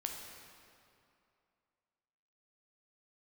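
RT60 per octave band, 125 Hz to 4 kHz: 2.4 s, 2.5 s, 2.6 s, 2.6 s, 2.2 s, 1.9 s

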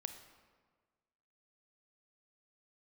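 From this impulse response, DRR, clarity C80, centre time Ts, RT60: 8.0 dB, 10.5 dB, 18 ms, 1.5 s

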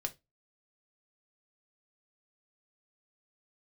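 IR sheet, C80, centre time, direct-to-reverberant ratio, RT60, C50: 29.5 dB, 5 ms, 4.0 dB, 0.20 s, 20.0 dB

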